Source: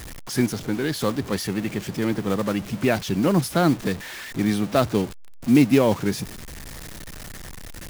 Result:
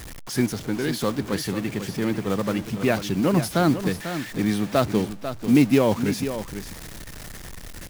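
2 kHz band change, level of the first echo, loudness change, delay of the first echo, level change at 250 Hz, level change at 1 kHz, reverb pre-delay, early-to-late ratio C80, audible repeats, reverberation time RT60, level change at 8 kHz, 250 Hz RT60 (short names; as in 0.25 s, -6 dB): -0.5 dB, -10.0 dB, -0.5 dB, 0.494 s, -0.5 dB, -0.5 dB, none, none, 1, none, -0.5 dB, none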